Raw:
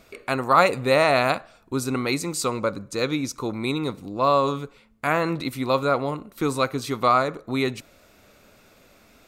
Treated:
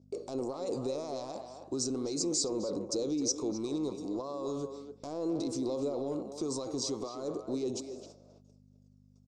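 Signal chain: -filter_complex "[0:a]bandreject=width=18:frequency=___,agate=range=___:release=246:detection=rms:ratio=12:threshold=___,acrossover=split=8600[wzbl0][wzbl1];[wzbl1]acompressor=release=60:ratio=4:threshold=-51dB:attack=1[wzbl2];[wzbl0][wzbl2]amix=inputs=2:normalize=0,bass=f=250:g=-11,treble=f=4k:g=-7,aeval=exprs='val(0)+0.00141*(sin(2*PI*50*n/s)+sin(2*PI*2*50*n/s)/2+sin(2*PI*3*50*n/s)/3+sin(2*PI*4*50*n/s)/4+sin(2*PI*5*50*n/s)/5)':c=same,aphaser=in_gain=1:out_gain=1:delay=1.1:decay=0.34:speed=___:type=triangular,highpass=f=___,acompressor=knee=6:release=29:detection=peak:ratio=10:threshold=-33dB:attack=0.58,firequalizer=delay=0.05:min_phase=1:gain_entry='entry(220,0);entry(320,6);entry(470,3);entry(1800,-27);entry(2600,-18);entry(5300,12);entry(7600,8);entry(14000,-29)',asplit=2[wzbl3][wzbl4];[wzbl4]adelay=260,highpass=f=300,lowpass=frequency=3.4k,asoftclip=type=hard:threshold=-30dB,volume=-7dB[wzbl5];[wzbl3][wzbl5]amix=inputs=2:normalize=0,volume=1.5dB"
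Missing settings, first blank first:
1.4k, -33dB, -49dB, 0.37, 120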